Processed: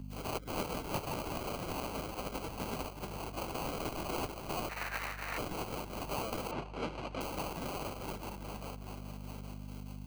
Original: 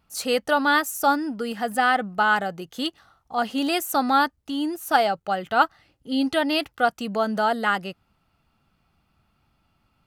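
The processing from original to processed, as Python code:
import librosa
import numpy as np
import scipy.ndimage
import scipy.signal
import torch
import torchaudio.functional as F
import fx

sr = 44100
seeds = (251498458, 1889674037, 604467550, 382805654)

y = fx.spec_quant(x, sr, step_db=30)
y = fx.echo_split(y, sr, split_hz=490.0, low_ms=103, high_ms=410, feedback_pct=52, wet_db=-4.5)
y = fx.phaser_stages(y, sr, stages=8, low_hz=150.0, high_hz=1300.0, hz=0.69, feedback_pct=10)
y = fx.spec_gate(y, sr, threshold_db=-20, keep='weak')
y = fx.sample_hold(y, sr, seeds[0], rate_hz=1800.0, jitter_pct=0)
y = fx.over_compress(y, sr, threshold_db=-42.0, ratio=-0.5, at=(1.79, 2.5), fade=0.02)
y = fx.ring_mod(y, sr, carrier_hz=1600.0, at=(4.69, 5.38))
y = fx.bandpass_edges(y, sr, low_hz=110.0, high_hz=3000.0, at=(6.51, 7.21))
y = fx.add_hum(y, sr, base_hz=50, snr_db=10)
y = fx.band_squash(y, sr, depth_pct=70)
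y = F.gain(torch.from_numpy(y), 3.5).numpy()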